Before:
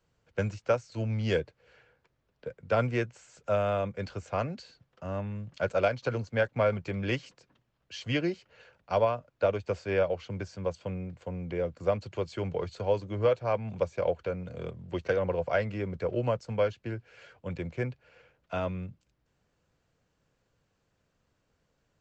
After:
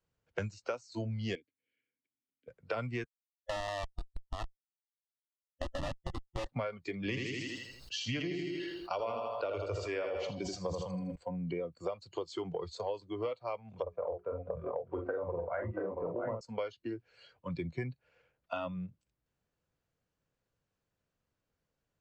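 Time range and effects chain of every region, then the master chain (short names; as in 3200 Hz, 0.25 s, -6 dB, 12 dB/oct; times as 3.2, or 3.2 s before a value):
1.35–2.48 vowel filter i + notches 50/100 Hz
3.04–6.46 Schmitt trigger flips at -26.5 dBFS + air absorption 110 m
6.97–11.16 feedback echo 80 ms, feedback 59%, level -6.5 dB + sustainer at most 34 dB/s
13.82–16.41 LPF 1400 Hz + notches 60/120/180/240/300/360/420 Hz + tapped delay 45/298/681/706 ms -4.5/-13/-4.5/-8 dB
whole clip: spectral noise reduction 16 dB; dynamic EQ 610 Hz, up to -4 dB, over -36 dBFS, Q 1.1; compressor 6:1, threshold -39 dBFS; gain +5 dB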